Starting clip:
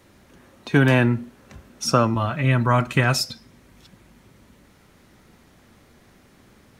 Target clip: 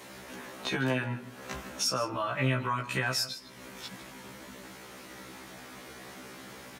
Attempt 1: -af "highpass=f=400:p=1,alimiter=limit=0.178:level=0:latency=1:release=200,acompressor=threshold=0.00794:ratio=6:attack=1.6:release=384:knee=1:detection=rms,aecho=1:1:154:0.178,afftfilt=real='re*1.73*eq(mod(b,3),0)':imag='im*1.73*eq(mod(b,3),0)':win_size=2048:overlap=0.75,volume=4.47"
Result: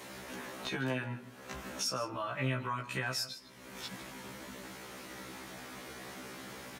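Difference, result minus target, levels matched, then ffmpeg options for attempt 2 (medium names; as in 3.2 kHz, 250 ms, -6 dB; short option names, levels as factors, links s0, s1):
compression: peak gain reduction +5.5 dB
-af "highpass=f=400:p=1,alimiter=limit=0.178:level=0:latency=1:release=200,acompressor=threshold=0.0168:ratio=6:attack=1.6:release=384:knee=1:detection=rms,aecho=1:1:154:0.178,afftfilt=real='re*1.73*eq(mod(b,3),0)':imag='im*1.73*eq(mod(b,3),0)':win_size=2048:overlap=0.75,volume=4.47"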